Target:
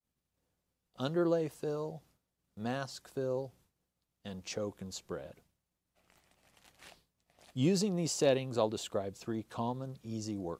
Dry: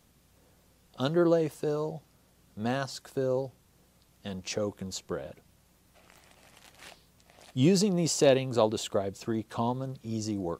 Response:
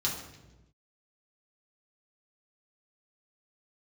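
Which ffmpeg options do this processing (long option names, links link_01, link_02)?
-af "agate=range=-33dB:threshold=-52dB:ratio=3:detection=peak,volume=-6dB"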